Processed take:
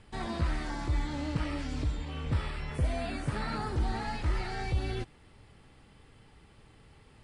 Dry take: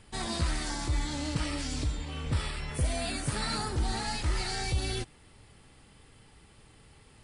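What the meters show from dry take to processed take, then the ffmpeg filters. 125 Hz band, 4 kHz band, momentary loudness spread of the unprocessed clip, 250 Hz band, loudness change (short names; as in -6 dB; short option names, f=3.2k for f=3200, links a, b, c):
0.0 dB, -9.0 dB, 3 LU, 0.0 dB, -1.5 dB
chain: -filter_complex "[0:a]aemphasis=mode=reproduction:type=50kf,acrossover=split=2900[a][b];[b]acompressor=threshold=-50dB:ratio=4:attack=1:release=60[c];[a][c]amix=inputs=2:normalize=0"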